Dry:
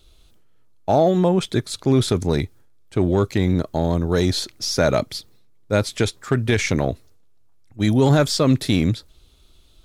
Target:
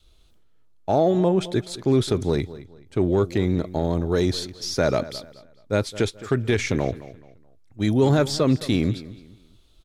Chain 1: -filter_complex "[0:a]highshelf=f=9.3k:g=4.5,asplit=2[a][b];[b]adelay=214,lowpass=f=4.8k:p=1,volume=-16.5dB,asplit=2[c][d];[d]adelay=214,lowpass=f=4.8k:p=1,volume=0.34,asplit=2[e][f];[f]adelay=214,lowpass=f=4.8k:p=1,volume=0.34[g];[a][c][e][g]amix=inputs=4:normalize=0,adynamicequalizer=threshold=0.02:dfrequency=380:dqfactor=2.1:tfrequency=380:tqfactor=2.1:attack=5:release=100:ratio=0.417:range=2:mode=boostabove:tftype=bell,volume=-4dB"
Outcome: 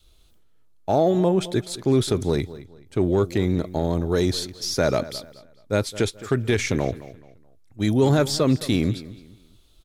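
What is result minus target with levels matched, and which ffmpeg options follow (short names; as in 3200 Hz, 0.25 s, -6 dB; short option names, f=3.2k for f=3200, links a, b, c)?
8000 Hz band +3.0 dB
-filter_complex "[0:a]highshelf=f=9.3k:g=-5,asplit=2[a][b];[b]adelay=214,lowpass=f=4.8k:p=1,volume=-16.5dB,asplit=2[c][d];[d]adelay=214,lowpass=f=4.8k:p=1,volume=0.34,asplit=2[e][f];[f]adelay=214,lowpass=f=4.8k:p=1,volume=0.34[g];[a][c][e][g]amix=inputs=4:normalize=0,adynamicequalizer=threshold=0.02:dfrequency=380:dqfactor=2.1:tfrequency=380:tqfactor=2.1:attack=5:release=100:ratio=0.417:range=2:mode=boostabove:tftype=bell,volume=-4dB"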